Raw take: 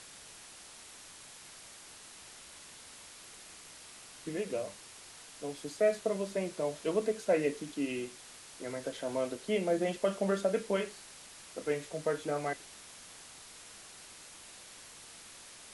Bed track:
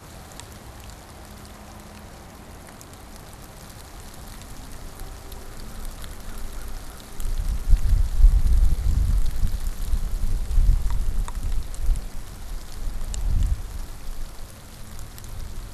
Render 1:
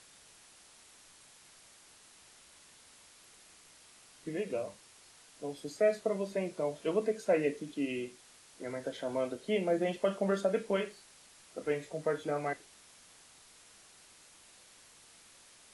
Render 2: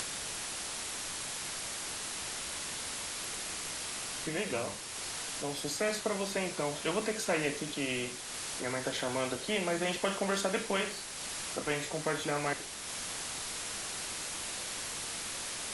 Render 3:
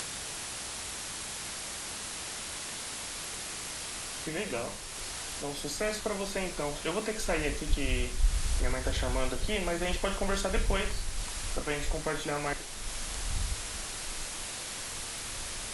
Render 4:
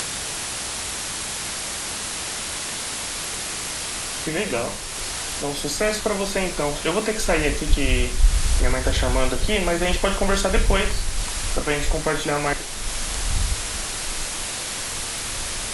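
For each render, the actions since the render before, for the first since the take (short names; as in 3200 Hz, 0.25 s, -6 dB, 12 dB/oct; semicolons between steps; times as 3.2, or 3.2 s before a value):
noise print and reduce 7 dB
upward compressor, threshold -48 dBFS; spectral compressor 2:1
add bed track -12 dB
gain +10 dB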